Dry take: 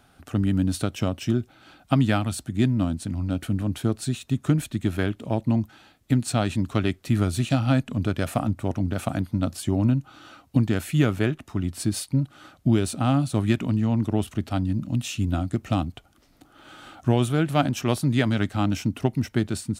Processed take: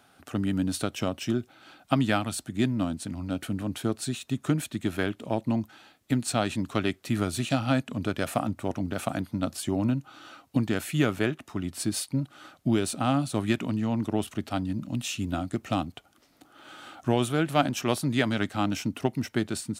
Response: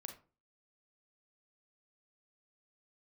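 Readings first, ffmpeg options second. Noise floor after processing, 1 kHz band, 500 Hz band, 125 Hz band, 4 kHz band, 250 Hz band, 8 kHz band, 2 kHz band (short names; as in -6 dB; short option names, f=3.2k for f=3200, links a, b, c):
-61 dBFS, -0.5 dB, -1.5 dB, -7.5 dB, 0.0 dB, -3.5 dB, 0.0 dB, 0.0 dB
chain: -af "highpass=f=270:p=1"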